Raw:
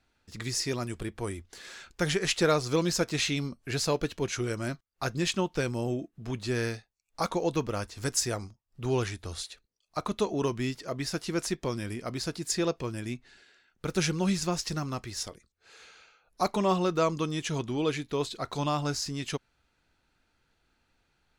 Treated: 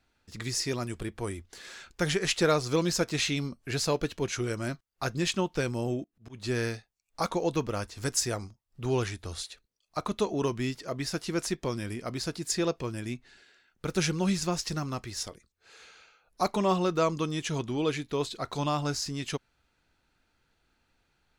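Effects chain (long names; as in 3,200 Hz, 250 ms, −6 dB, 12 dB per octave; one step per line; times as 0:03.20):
0:06.03–0:06.44: volume swells 195 ms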